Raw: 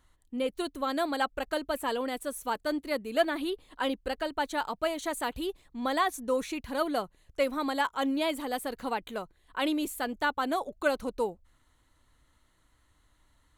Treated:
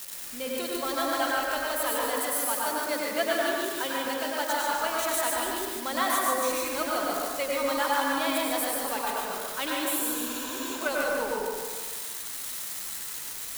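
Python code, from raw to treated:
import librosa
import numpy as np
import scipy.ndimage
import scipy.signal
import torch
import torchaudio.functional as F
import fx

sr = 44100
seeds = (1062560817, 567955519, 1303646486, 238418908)

y = x + 0.5 * 10.0 ** (-29.0 / 20.0) * np.diff(np.sign(x), prepend=np.sign(x[:1]))
y = fx.low_shelf(y, sr, hz=500.0, db=-12.0)
y = fx.echo_feedback(y, sr, ms=145, feedback_pct=46, wet_db=-5)
y = fx.quant_dither(y, sr, seeds[0], bits=8, dither='triangular')
y = fx.highpass(y, sr, hz=81.0, slope=24, at=(2.08, 4.66))
y = fx.spec_repair(y, sr, seeds[1], start_s=9.91, length_s=0.82, low_hz=520.0, high_hz=7400.0, source='before')
y = fx.rev_plate(y, sr, seeds[2], rt60_s=1.2, hf_ratio=0.35, predelay_ms=85, drr_db=-3.0)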